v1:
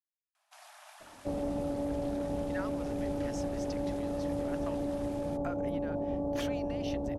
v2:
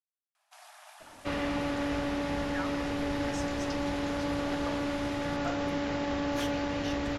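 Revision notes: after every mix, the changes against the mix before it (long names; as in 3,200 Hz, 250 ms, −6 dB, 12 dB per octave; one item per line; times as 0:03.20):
second sound: remove Butterworth low-pass 790 Hz 36 dB per octave
reverb: on, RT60 0.35 s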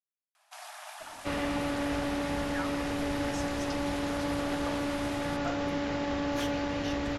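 first sound +7.5 dB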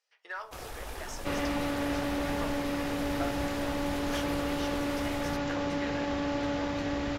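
speech: entry −2.25 s
first sound: remove linear-phase brick-wall band-pass 590–12,000 Hz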